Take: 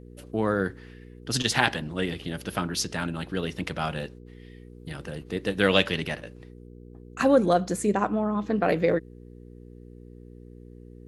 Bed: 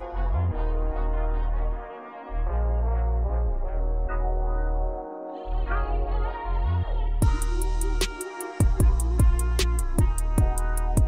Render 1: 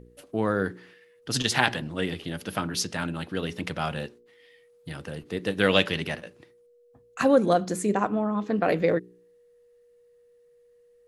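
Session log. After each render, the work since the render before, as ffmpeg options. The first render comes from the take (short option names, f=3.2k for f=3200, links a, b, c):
-af "bandreject=f=60:t=h:w=4,bandreject=f=120:t=h:w=4,bandreject=f=180:t=h:w=4,bandreject=f=240:t=h:w=4,bandreject=f=300:t=h:w=4,bandreject=f=360:t=h:w=4,bandreject=f=420:t=h:w=4"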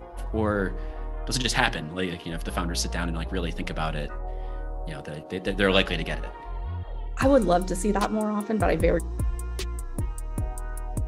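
-filter_complex "[1:a]volume=-8dB[a];[0:a][a]amix=inputs=2:normalize=0"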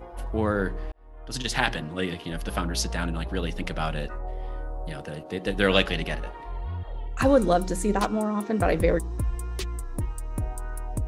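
-filter_complex "[0:a]asplit=2[a][b];[a]atrim=end=0.92,asetpts=PTS-STARTPTS,afade=t=out:st=0.916:d=0.004:c=hsin[c];[b]atrim=start=0.92,asetpts=PTS-STARTPTS,afade=t=in:d=0.87[d];[c][d]concat=n=2:v=0:a=1"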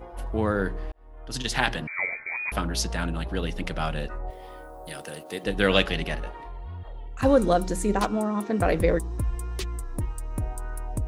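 -filter_complex "[0:a]asettb=1/sr,asplit=3[a][b][c];[a]atrim=end=1.874[d];[b]atrim=start=1.87:end=2.52,asetpts=PTS-STARTPTS,afade=t=in:d=0.004:c=qsin,afade=t=out:st=0.646:d=0.004:c=qsin,lowpass=f=2.1k:t=q:w=0.5098,lowpass=f=2.1k:t=q:w=0.6013,lowpass=f=2.1k:t=q:w=0.9,lowpass=f=2.1k:t=q:w=2.563,afreqshift=-2500[e];[c]atrim=start=2.516[f];[d][e]acrossfade=d=0.004:c1=hsin:c2=qsin[g];[g][f]acrossfade=d=0.004:c1=qsin:c2=hsin,asettb=1/sr,asplit=3[h][i][j];[h]atrim=end=4.304[k];[i]atrim=start=4.3:end=5.44,asetpts=PTS-STARTPTS,afade=t=in:d=0.004:c=qsin,afade=t=out:st=1.136:d=0.004:c=qsin,aemphasis=mode=production:type=bsi[l];[j]atrim=start=5.436[m];[k][l]acrossfade=d=0.004:c1=hsin:c2=qsin[n];[n][m]acrossfade=d=0.004:c1=qsin:c2=hsin,asettb=1/sr,asplit=3[o][p][q];[o]atrim=end=6.374[r];[p]atrim=start=6.37:end=7.23,asetpts=PTS-STARTPTS,afade=t=in:d=0.004:c=qsin,afade=t=out:st=0.856:d=0.004:c=qsin,acompressor=threshold=-36dB:ratio=2.5:attack=3.2:release=140:knee=1:detection=peak[s];[q]atrim=start=7.226[t];[r][s]acrossfade=d=0.004:c1=hsin:c2=qsin[u];[u][t]acrossfade=d=0.004:c1=qsin:c2=hsin"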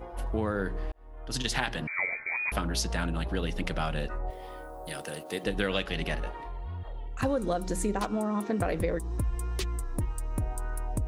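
-af "acompressor=threshold=-25dB:ratio=6"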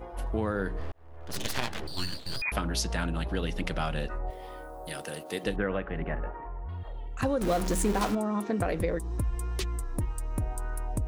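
-filter_complex "[0:a]asettb=1/sr,asplit=3[a][b][c];[a]atrim=end=0.804[d];[b]atrim=start=0.8:end=2.42,asetpts=PTS-STARTPTS,afade=t=in:d=0.004:c=qsin,afade=t=out:st=1.616:d=0.004:c=qsin,aeval=exprs='abs(val(0))':c=same[e];[c]atrim=start=2.416[f];[d][e]acrossfade=d=0.004:c1=hsin:c2=qsin[g];[g][f]acrossfade=d=0.004:c1=qsin:c2=hsin,asettb=1/sr,asplit=3[h][i][j];[h]atrim=end=5.564[k];[i]atrim=start=5.56:end=6.69,asetpts=PTS-STARTPTS,afade=t=in:d=0.004:c=qsin,afade=t=out:st=1.126:d=0.004:c=qsin,lowpass=f=1.8k:w=0.5412,lowpass=f=1.8k:w=1.3066[l];[j]atrim=start=6.686[m];[k][l]acrossfade=d=0.004:c1=hsin:c2=qsin[n];[n][m]acrossfade=d=0.004:c1=qsin:c2=hsin,asettb=1/sr,asplit=3[o][p][q];[o]atrim=end=7.414[r];[p]atrim=start=7.41:end=8.15,asetpts=PTS-STARTPTS,afade=t=in:d=0.004:c=qsin,afade=t=out:st=0.736:d=0.004:c=qsin,aeval=exprs='val(0)+0.5*0.0335*sgn(val(0))':c=same[s];[q]atrim=start=8.146[t];[r][s]acrossfade=d=0.004:c1=hsin:c2=qsin[u];[u][t]acrossfade=d=0.004:c1=qsin:c2=hsin"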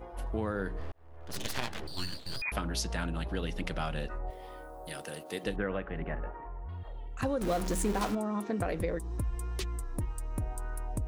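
-af "volume=-3.5dB"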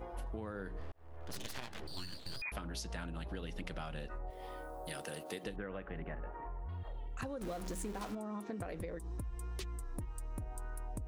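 -af "acompressor=threshold=-39dB:ratio=6"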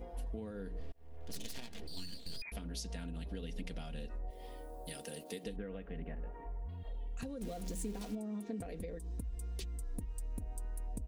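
-af "equalizer=f=1.2k:t=o:w=1.4:g=-13,aecho=1:1:4.3:0.49"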